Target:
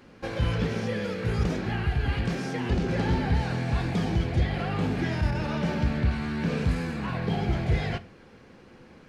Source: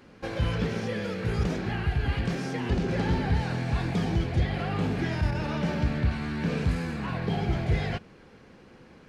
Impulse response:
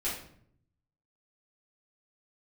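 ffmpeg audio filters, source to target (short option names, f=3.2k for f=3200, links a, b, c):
-filter_complex "[0:a]asplit=2[a][b];[1:a]atrim=start_sample=2205,atrim=end_sample=6174[c];[b][c]afir=irnorm=-1:irlink=0,volume=-18.5dB[d];[a][d]amix=inputs=2:normalize=0"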